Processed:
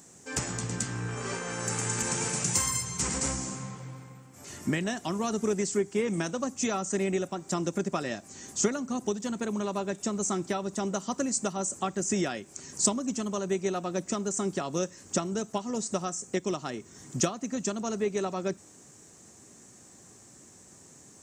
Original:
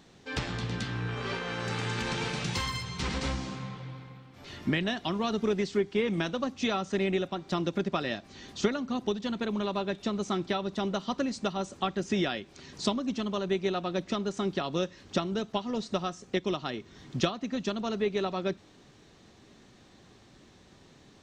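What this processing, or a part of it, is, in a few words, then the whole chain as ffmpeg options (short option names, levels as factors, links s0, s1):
budget condenser microphone: -af "highpass=78,highshelf=f=5400:t=q:w=3:g=13.5"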